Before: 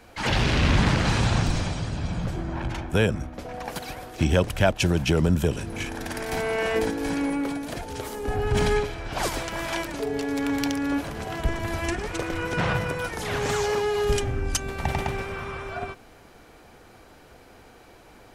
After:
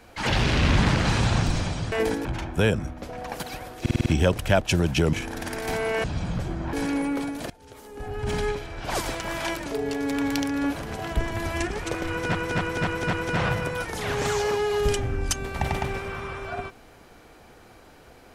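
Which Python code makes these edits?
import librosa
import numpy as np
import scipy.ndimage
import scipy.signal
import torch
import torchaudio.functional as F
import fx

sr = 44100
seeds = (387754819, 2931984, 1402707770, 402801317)

y = fx.edit(x, sr, fx.swap(start_s=1.92, length_s=0.69, other_s=6.68, other_length_s=0.33),
    fx.stutter(start_s=4.17, slice_s=0.05, count=6),
    fx.cut(start_s=5.24, length_s=0.53),
    fx.fade_in_from(start_s=7.78, length_s=1.62, floor_db=-20.0),
    fx.repeat(start_s=12.37, length_s=0.26, count=5), tone=tone)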